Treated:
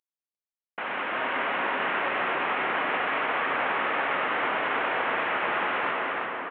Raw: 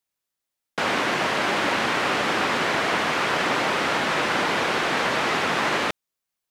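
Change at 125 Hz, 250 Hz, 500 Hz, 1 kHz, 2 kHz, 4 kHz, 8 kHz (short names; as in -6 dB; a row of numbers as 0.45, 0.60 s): -13.5 dB, -9.0 dB, -5.0 dB, -3.0 dB, -3.0 dB, -10.0 dB, under -40 dB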